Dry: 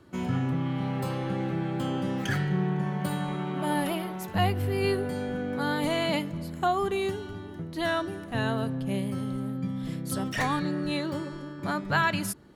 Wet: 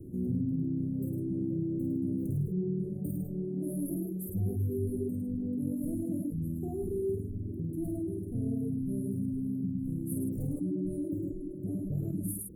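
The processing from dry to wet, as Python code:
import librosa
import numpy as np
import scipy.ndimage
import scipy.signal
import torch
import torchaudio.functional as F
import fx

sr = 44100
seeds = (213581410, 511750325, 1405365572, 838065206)

y = fx.dynamic_eq(x, sr, hz=2000.0, q=2.4, threshold_db=-43.0, ratio=4.0, max_db=-3)
y = scipy.signal.sosfilt(scipy.signal.cheby2(4, 50, [910.0, 5300.0], 'bandstop', fs=sr, output='sos'), y)
y = fx.low_shelf(y, sr, hz=100.0, db=7.0)
y = fx.doubler(y, sr, ms=49.0, db=-3)
y = y + 10.0 ** (-3.5 / 20.0) * np.pad(y, (int(106 * sr / 1000.0), 0))[:len(y)]
y = fx.dereverb_blind(y, sr, rt60_s=0.73)
y = fx.env_flatten(y, sr, amount_pct=50)
y = F.gain(torch.from_numpy(y), -8.5).numpy()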